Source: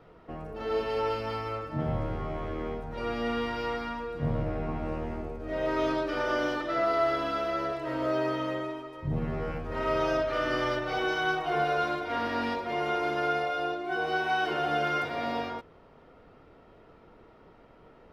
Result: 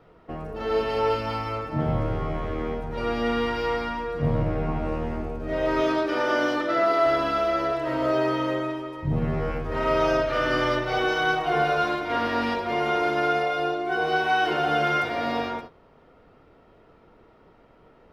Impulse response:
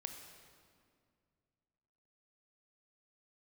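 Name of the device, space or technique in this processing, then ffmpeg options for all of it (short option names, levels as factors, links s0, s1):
keyed gated reverb: -filter_complex "[0:a]asettb=1/sr,asplit=3[s0][s1][s2];[s0]atrim=end=5.814[s3];[s1]atrim=start=5.81:end=7.06,asetpts=PTS-STARTPTS,afade=t=in:d=0.004:c=qsin,afade=t=out:st=1.246:d=0.004:c=qsin,highpass=170[s4];[s2]atrim=start=7.056[s5];[s3][s4]acrossfade=d=0.004:c1=hsin:c2=qsin[s6];[s6][s5]acrossfade=d=0.004:c1=qsin:c2=hsin,asplit=3[s7][s8][s9];[1:a]atrim=start_sample=2205[s10];[s8][s10]afir=irnorm=-1:irlink=0[s11];[s9]apad=whole_len=799317[s12];[s11][s12]sidechaingate=range=0.0224:threshold=0.00562:ratio=16:detection=peak,volume=1.26[s13];[s7][s13]amix=inputs=2:normalize=0"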